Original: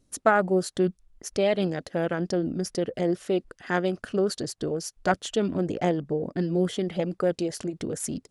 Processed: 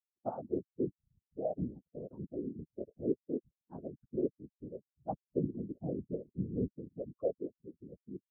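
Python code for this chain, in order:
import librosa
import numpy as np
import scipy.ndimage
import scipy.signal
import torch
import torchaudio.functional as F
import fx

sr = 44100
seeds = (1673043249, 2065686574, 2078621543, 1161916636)

y = fx.bin_expand(x, sr, power=3.0)
y = fx.whisperise(y, sr, seeds[0])
y = fx.highpass(y, sr, hz=160.0, slope=6)
y = fx.rider(y, sr, range_db=3, speed_s=2.0)
y = scipy.ndimage.gaussian_filter1d(y, 14.0, mode='constant')
y = y * 10.0 ** (-2.0 / 20.0)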